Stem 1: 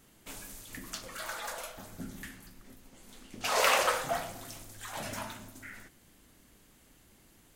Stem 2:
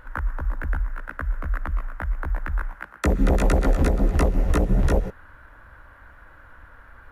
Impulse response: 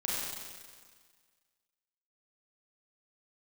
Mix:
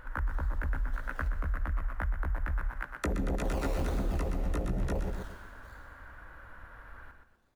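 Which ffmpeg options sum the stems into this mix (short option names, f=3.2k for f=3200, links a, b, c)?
-filter_complex "[0:a]acrusher=samples=22:mix=1:aa=0.000001:lfo=1:lforange=13.2:lforate=1.7,volume=-18dB,asplit=3[a][b][c];[a]atrim=end=1.28,asetpts=PTS-STARTPTS,afade=t=out:st=1.276:d=0.004:c=hsin[d];[b]atrim=start=1.28:end=2.48,asetpts=PTS-STARTPTS,volume=0[e];[c]atrim=start=2.48,asetpts=PTS-STARTPTS,afade=t=in:d=0.004:c=hsin[f];[d][e][f]concat=n=3:v=0:a=1,asplit=2[g][h];[h]volume=-3.5dB[i];[1:a]alimiter=limit=-17.5dB:level=0:latency=1:release=23,volume=-2.5dB,asplit=2[j][k];[k]volume=-7dB[l];[2:a]atrim=start_sample=2205[m];[i][m]afir=irnorm=-1:irlink=0[n];[l]aecho=0:1:123|246|369|492|615:1|0.33|0.109|0.0359|0.0119[o];[g][j][n][o]amix=inputs=4:normalize=0,acompressor=threshold=-27dB:ratio=6"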